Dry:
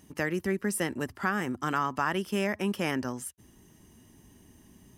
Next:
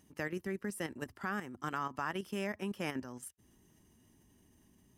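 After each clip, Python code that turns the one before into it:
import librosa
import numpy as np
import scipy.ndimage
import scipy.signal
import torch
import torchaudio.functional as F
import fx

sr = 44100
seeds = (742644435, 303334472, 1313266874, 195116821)

y = fx.level_steps(x, sr, step_db=10)
y = F.gain(torch.from_numpy(y), -6.0).numpy()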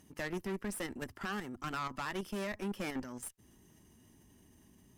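y = fx.tube_stage(x, sr, drive_db=39.0, bias=0.6)
y = F.gain(torch.from_numpy(y), 6.5).numpy()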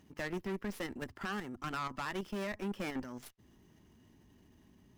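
y = scipy.ndimage.median_filter(x, 5, mode='constant')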